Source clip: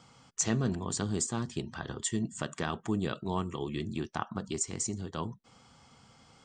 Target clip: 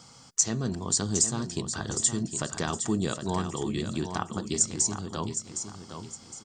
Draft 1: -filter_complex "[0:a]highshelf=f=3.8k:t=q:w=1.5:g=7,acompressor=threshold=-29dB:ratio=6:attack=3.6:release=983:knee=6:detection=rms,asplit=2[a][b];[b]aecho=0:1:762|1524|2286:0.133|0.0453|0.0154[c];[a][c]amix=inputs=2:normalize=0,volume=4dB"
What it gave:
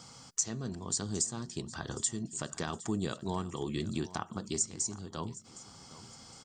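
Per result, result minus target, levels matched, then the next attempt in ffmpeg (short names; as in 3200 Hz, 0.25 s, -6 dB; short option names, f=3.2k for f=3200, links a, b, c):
compressor: peak gain reduction +8.5 dB; echo-to-direct -9 dB
-filter_complex "[0:a]highshelf=f=3.8k:t=q:w=1.5:g=7,acompressor=threshold=-19dB:ratio=6:attack=3.6:release=983:knee=6:detection=rms,asplit=2[a][b];[b]aecho=0:1:762|1524|2286:0.133|0.0453|0.0154[c];[a][c]amix=inputs=2:normalize=0,volume=4dB"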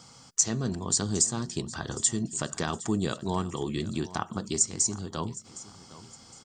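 echo-to-direct -9 dB
-filter_complex "[0:a]highshelf=f=3.8k:t=q:w=1.5:g=7,acompressor=threshold=-19dB:ratio=6:attack=3.6:release=983:knee=6:detection=rms,asplit=2[a][b];[b]aecho=0:1:762|1524|2286|3048:0.376|0.128|0.0434|0.0148[c];[a][c]amix=inputs=2:normalize=0,volume=4dB"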